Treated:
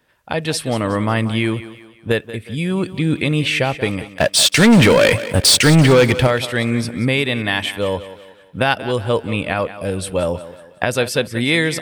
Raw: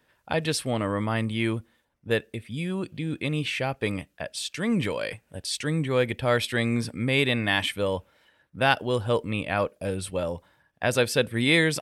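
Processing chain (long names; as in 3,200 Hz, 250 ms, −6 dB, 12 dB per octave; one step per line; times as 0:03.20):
camcorder AGC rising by 7.4 dB per second
0:04.14–0:06.27: leveller curve on the samples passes 3
feedback echo with a high-pass in the loop 183 ms, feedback 43%, high-pass 160 Hz, level −14 dB
level +4 dB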